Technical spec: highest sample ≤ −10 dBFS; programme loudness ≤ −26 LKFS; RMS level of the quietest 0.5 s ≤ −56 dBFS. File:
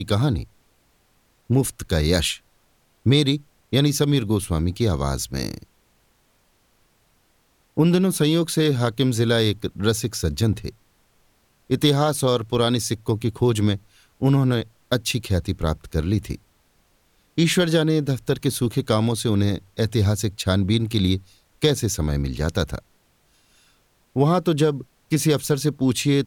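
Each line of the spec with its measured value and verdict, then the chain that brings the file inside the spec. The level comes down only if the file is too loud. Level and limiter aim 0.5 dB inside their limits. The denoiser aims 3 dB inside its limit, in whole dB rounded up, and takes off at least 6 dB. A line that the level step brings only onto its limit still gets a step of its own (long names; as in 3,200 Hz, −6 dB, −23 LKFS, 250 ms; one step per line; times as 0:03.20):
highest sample −4.5 dBFS: out of spec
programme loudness −22.0 LKFS: out of spec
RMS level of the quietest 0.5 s −63 dBFS: in spec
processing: level −4.5 dB
brickwall limiter −10.5 dBFS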